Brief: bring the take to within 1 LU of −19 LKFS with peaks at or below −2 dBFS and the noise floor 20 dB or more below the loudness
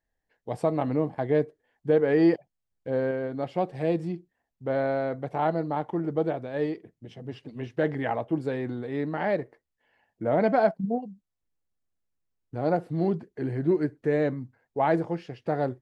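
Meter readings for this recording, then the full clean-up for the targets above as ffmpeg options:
integrated loudness −27.5 LKFS; sample peak −11.0 dBFS; target loudness −19.0 LKFS
→ -af "volume=8.5dB"

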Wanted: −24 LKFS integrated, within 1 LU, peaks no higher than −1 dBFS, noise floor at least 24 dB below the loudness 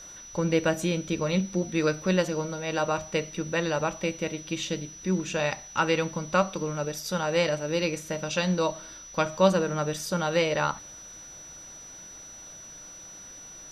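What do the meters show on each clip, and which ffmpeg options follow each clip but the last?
interfering tone 5,900 Hz; level of the tone −43 dBFS; integrated loudness −27.5 LKFS; sample peak −7.5 dBFS; target loudness −24.0 LKFS
→ -af "bandreject=frequency=5900:width=30"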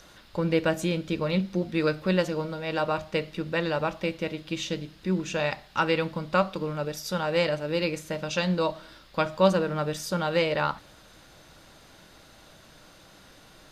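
interfering tone none found; integrated loudness −28.0 LKFS; sample peak −7.5 dBFS; target loudness −24.0 LKFS
→ -af "volume=4dB"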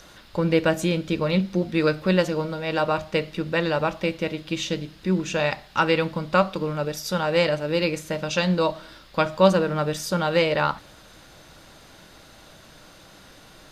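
integrated loudness −24.0 LKFS; sample peak −3.5 dBFS; background noise floor −49 dBFS

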